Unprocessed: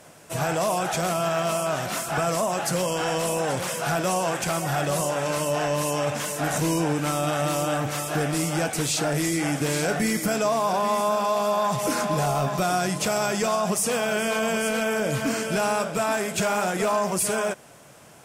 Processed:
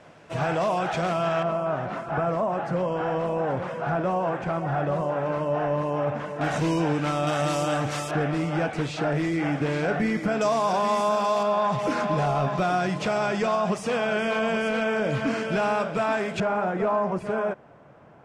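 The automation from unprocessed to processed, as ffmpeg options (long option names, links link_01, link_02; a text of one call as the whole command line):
ffmpeg -i in.wav -af "asetnsamples=nb_out_samples=441:pad=0,asendcmd='1.43 lowpass f 1400;6.41 lowpass f 3800;7.27 lowpass f 6300;8.11 lowpass f 2400;10.41 lowpass f 6100;11.43 lowpass f 3200;16.4 lowpass f 1400',lowpass=3200" out.wav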